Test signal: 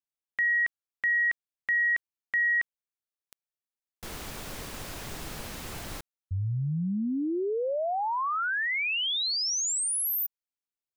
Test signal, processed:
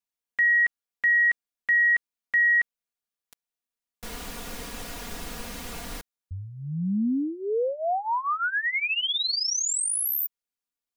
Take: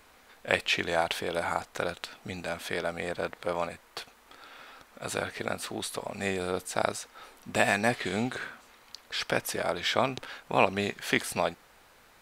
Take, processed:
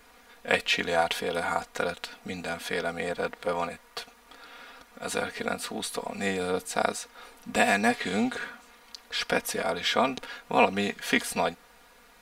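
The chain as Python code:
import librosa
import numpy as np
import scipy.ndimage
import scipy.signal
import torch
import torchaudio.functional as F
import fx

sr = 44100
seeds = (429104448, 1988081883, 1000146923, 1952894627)

y = x + 0.76 * np.pad(x, (int(4.2 * sr / 1000.0), 0))[:len(x)]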